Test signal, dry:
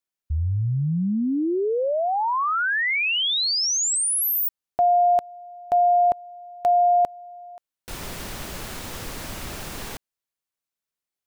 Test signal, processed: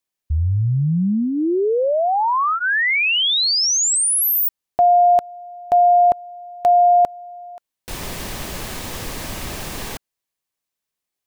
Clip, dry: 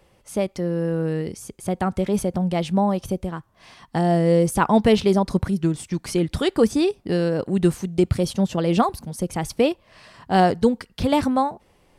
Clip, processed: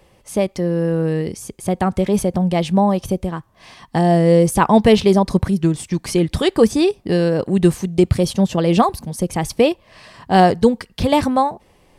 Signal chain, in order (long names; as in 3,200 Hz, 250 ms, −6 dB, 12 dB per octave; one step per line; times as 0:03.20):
notch filter 1,400 Hz, Q 11
dynamic equaliser 270 Hz, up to −4 dB, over −35 dBFS, Q 5.9
level +5 dB